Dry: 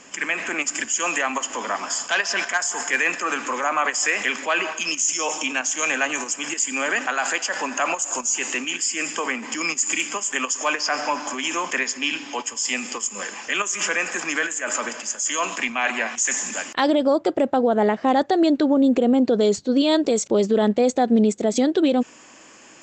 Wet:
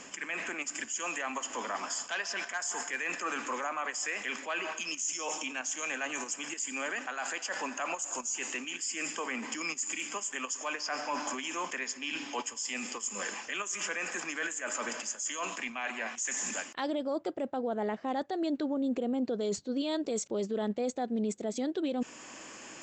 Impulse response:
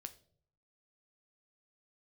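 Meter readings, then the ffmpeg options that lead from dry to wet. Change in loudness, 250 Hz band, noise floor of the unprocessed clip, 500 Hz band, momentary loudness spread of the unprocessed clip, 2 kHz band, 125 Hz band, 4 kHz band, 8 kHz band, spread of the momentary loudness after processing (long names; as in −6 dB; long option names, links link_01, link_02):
−12.5 dB, −13.5 dB, −47 dBFS, −13.5 dB, 7 LU, −12.0 dB, −13.0 dB, −11.5 dB, −11.0 dB, 3 LU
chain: -af "areverse,acompressor=threshold=-29dB:ratio=6,areverse,alimiter=limit=-24dB:level=0:latency=1:release=325"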